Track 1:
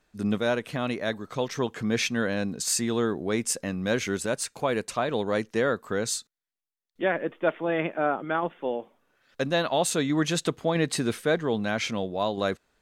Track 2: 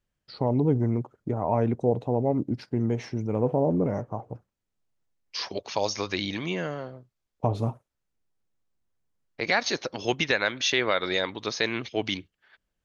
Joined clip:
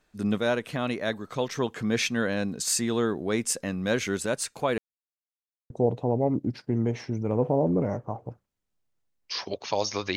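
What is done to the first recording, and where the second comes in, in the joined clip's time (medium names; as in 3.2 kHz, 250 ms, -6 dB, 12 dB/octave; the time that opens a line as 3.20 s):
track 1
4.78–5.70 s: mute
5.70 s: go over to track 2 from 1.74 s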